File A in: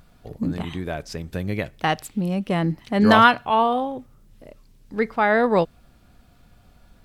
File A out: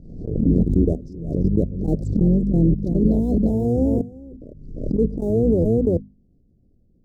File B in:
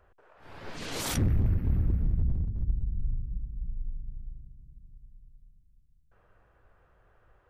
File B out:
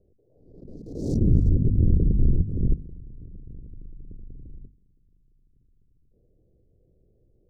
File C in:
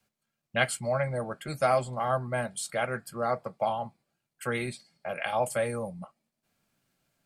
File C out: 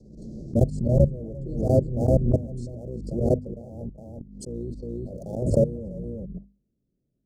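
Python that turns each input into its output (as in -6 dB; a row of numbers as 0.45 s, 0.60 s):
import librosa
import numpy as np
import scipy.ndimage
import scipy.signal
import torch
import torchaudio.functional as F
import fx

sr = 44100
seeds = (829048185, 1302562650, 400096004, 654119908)

p1 = fx.octave_divider(x, sr, octaves=2, level_db=0.0)
p2 = scipy.signal.sosfilt(scipy.signal.cheby1(3, 1.0, 4400.0, 'lowpass', fs=sr, output='sos'), p1)
p3 = fx.tilt_shelf(p2, sr, db=6.0, hz=1200.0)
p4 = np.sign(p3) * np.maximum(np.abs(p3) - 10.0 ** (-33.0 / 20.0), 0.0)
p5 = p3 + F.gain(torch.from_numpy(p4), -6.0).numpy()
p6 = fx.low_shelf(p5, sr, hz=94.0, db=-8.0)
p7 = fx.auto_swell(p6, sr, attack_ms=110.0)
p8 = p7 + fx.echo_single(p7, sr, ms=346, db=-10.0, dry=0)
p9 = fx.level_steps(p8, sr, step_db=22)
p10 = scipy.signal.sosfilt(scipy.signal.cheby2(4, 70, [1200.0, 2600.0], 'bandstop', fs=sr, output='sos'), p9)
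p11 = fx.hum_notches(p10, sr, base_hz=50, count=5)
p12 = fx.pre_swell(p11, sr, db_per_s=60.0)
y = librosa.util.normalize(p12) * 10.0 ** (-6 / 20.0)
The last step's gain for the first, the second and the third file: +7.5 dB, +5.0 dB, +12.5 dB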